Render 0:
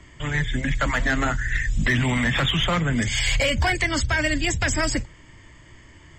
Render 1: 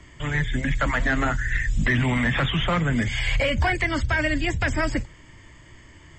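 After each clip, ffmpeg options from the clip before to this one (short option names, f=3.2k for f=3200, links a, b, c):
-filter_complex "[0:a]acrossover=split=3000[a][b];[b]acompressor=threshold=-42dB:ratio=4:attack=1:release=60[c];[a][c]amix=inputs=2:normalize=0"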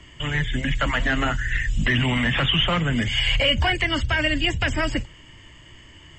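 -af "equalizer=f=2.9k:t=o:w=0.24:g=13"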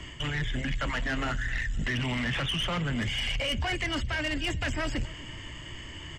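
-filter_complex "[0:a]areverse,acompressor=threshold=-29dB:ratio=16,areverse,aeval=exprs='0.0891*(cos(1*acos(clip(val(0)/0.0891,-1,1)))-cos(1*PI/2))+0.0141*(cos(5*acos(clip(val(0)/0.0891,-1,1)))-cos(5*PI/2))':c=same,asplit=2[a][b];[b]adelay=260,lowpass=f=4.6k:p=1,volume=-21dB,asplit=2[c][d];[d]adelay=260,lowpass=f=4.6k:p=1,volume=0.48,asplit=2[e][f];[f]adelay=260,lowpass=f=4.6k:p=1,volume=0.48[g];[a][c][e][g]amix=inputs=4:normalize=0"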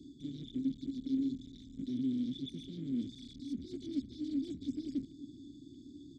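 -filter_complex "[0:a]afftfilt=real='re*(1-between(b*sr/4096,430,3400))':imag='im*(1-between(b*sr/4096,430,3400))':win_size=4096:overlap=0.75,aeval=exprs='clip(val(0),-1,0.0178)':c=same,asplit=3[a][b][c];[a]bandpass=f=270:t=q:w=8,volume=0dB[d];[b]bandpass=f=2.29k:t=q:w=8,volume=-6dB[e];[c]bandpass=f=3.01k:t=q:w=8,volume=-9dB[f];[d][e][f]amix=inputs=3:normalize=0,volume=7dB"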